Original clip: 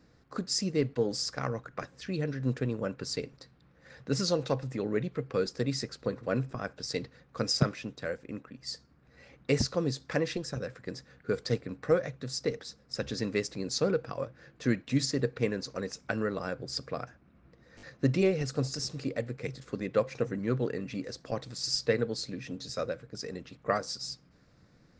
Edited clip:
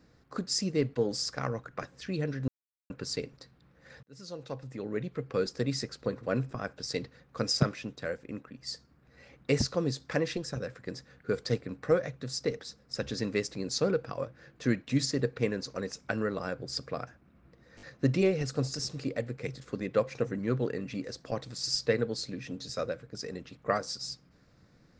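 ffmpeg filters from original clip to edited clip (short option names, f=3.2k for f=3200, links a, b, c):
-filter_complex "[0:a]asplit=4[a][b][c][d];[a]atrim=end=2.48,asetpts=PTS-STARTPTS,afade=t=out:st=2.476:d=0.004:c=hsin[e];[b]atrim=start=2.48:end=2.9,asetpts=PTS-STARTPTS,volume=0[f];[c]atrim=start=2.9:end=4.03,asetpts=PTS-STARTPTS,afade=t=in:d=0.004:c=hsin,afade=t=out:st=1.126:d=0.004:c=hsin[g];[d]atrim=start=4.03,asetpts=PTS-STARTPTS,afade=t=in:d=1.39[h];[e][f][g][h]concat=n=4:v=0:a=1"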